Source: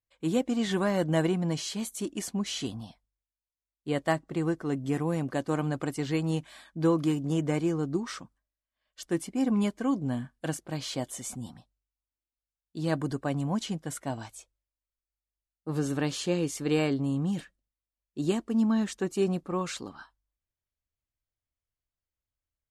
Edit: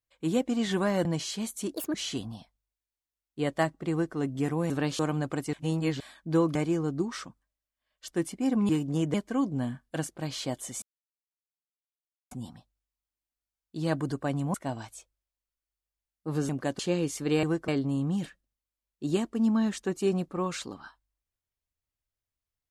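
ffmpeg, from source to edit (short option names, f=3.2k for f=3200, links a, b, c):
-filter_complex "[0:a]asplit=17[a][b][c][d][e][f][g][h][i][j][k][l][m][n][o][p][q];[a]atrim=end=1.052[r];[b]atrim=start=1.428:end=2.124[s];[c]atrim=start=2.12:end=2.43,asetpts=PTS-STARTPTS,asetrate=67914,aresample=44100,atrim=end_sample=8877,asetpts=PTS-STARTPTS[t];[d]atrim=start=2.426:end=5.192[u];[e]atrim=start=15.898:end=16.192[v];[f]atrim=start=5.488:end=6.032[w];[g]atrim=start=6.028:end=6.502,asetpts=PTS-STARTPTS,areverse[x];[h]atrim=start=6.498:end=7.052[y];[i]atrim=start=7.498:end=9.642[z];[j]atrim=start=7.048:end=7.502[aa];[k]atrim=start=9.638:end=11.32,asetpts=PTS-STARTPTS,afade=t=out:st=1.678:d=0.004:c=hsin,apad=pad_dur=1.49[ab];[l]atrim=start=11.32:end=13.552,asetpts=PTS-STARTPTS,afade=t=in:d=0.004:c=hsin[ac];[m]atrim=start=13.948:end=15.902[ad];[n]atrim=start=5.188:end=5.492[ae];[o]atrim=start=16.188:end=16.832[af];[p]atrim=start=4.398:end=4.652[ag];[q]atrim=start=16.828[ah];[r][s]acrossfade=d=0.004:c1=hsin:c2=hsin[ai];[ai][t]acrossfade=d=0.004:c1=hsin:c2=hsin[aj];[aj][u]acrossfade=d=0.004:c1=hsin:c2=hsin[ak];[ak][v]acrossfade=d=0.004:c1=hsin:c2=hsin[al];[al][w]acrossfade=d=0.004:c1=hsin:c2=hsin[am];[am][x]acrossfade=d=0.004:c1=hsin:c2=hsin[an];[an][y]acrossfade=d=0.004:c1=hsin:c2=hsin[ao];[ao][z]acrossfade=d=0.004:c1=hsin:c2=hsin[ap];[ap][aa]acrossfade=d=0.004:c1=hsin:c2=hsin[aq];[ab][ac]concat=n=2:v=0:a=1[ar];[aq][ar]acrossfade=d=0.004:c1=hsin:c2=hsin[as];[as][ad]acrossfade=d=0.004:c1=hsin:c2=hsin[at];[at][ae]acrossfade=d=0.004:c1=hsin:c2=hsin[au];[au][af]acrossfade=d=0.004:c1=hsin:c2=hsin[av];[av][ag]acrossfade=d=0.004:c1=hsin:c2=hsin[aw];[aw][ah]acrossfade=d=0.004:c1=hsin:c2=hsin"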